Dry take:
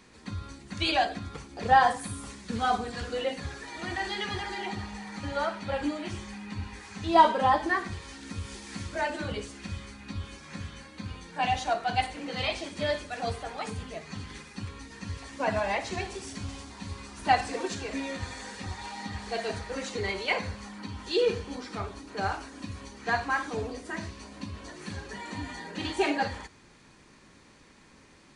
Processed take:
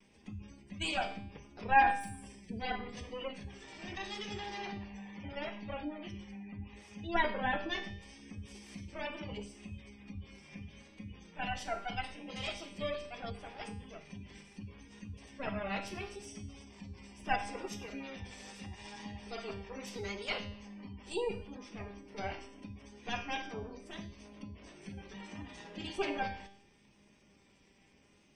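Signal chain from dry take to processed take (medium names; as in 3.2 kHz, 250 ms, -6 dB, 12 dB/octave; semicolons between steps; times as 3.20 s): comb filter that takes the minimum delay 0.36 ms; spectral gate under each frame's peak -25 dB strong; dynamic bell 5.1 kHz, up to +3 dB, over -48 dBFS, Q 0.86; feedback comb 200 Hz, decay 0.63 s, harmonics all, mix 80%; vibrato 0.75 Hz 33 cents; trim +3.5 dB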